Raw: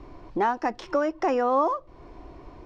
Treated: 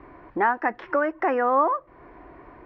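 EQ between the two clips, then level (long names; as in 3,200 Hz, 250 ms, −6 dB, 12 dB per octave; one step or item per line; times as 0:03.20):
high-pass filter 42 Hz
low-pass with resonance 1,800 Hz, resonance Q 2.8
parametric band 72 Hz −6.5 dB 2.1 octaves
0.0 dB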